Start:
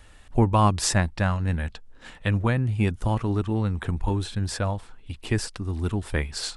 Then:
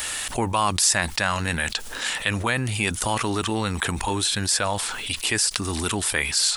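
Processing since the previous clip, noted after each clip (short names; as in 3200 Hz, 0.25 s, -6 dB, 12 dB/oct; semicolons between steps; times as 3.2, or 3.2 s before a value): tilt +4.5 dB/oct; fast leveller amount 70%; gain -7 dB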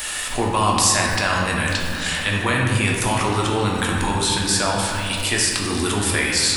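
reverb RT60 2.3 s, pre-delay 7 ms, DRR -2.5 dB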